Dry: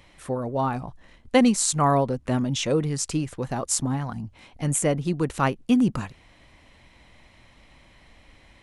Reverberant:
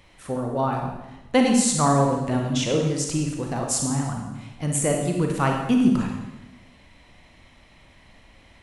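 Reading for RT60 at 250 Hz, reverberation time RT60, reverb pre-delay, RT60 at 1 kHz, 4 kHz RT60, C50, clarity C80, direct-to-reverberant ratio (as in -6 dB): 1.2 s, 1.1 s, 33 ms, 1.0 s, 1.0 s, 3.0 dB, 5.5 dB, 1.0 dB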